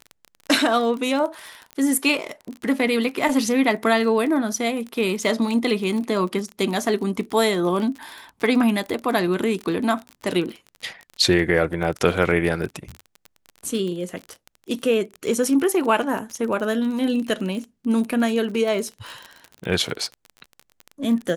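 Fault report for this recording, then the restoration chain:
surface crackle 31 per second −27 dBFS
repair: click removal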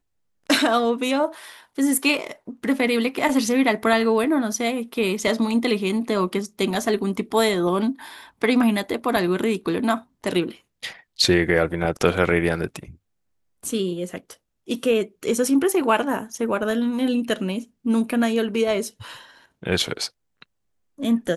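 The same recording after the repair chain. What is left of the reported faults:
none of them is left

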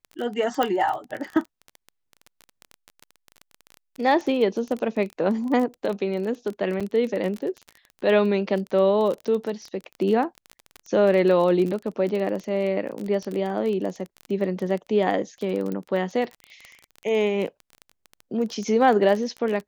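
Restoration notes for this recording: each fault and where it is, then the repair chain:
surface crackle 23 per second −28 dBFS
0:00.63: click −10 dBFS
0:06.80–0:06.81: drop-out 6 ms
0:15.72: click −19 dBFS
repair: click removal
repair the gap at 0:06.80, 6 ms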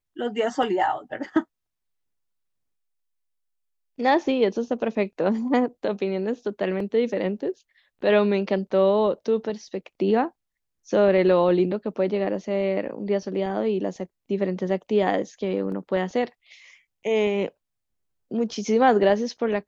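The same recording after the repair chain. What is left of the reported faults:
0:00.63: click
0:15.72: click

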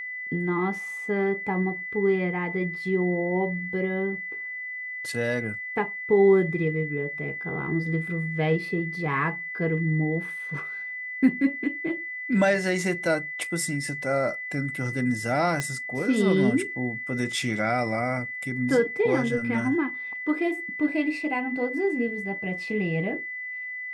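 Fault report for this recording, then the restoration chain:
whistle 2,000 Hz −32 dBFS
0:15.60: click −13 dBFS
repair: click removal
notch filter 2,000 Hz, Q 30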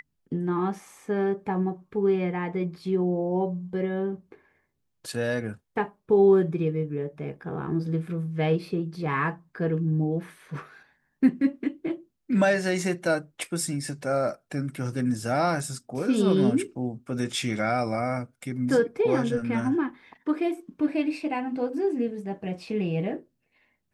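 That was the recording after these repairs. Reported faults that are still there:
0:15.60: click

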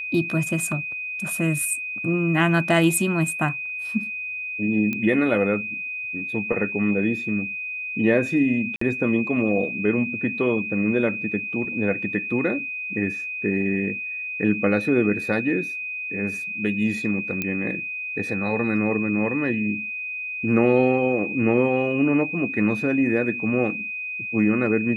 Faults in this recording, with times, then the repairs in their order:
whistle 2,500 Hz −28 dBFS
0:04.93: click −14 dBFS
0:08.76–0:08.81: drop-out 54 ms
0:17.42: click −11 dBFS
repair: click removal
notch filter 2,500 Hz, Q 30
repair the gap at 0:08.76, 54 ms

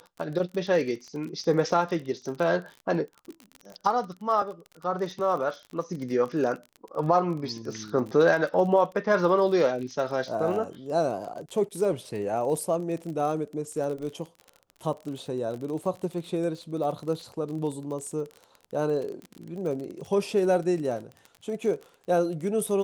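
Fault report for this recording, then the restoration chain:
surface crackle 36 per second −34 dBFS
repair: click removal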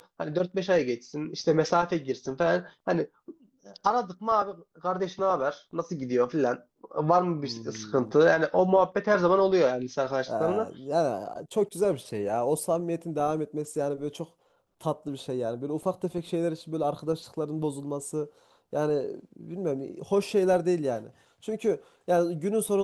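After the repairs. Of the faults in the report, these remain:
none of them is left

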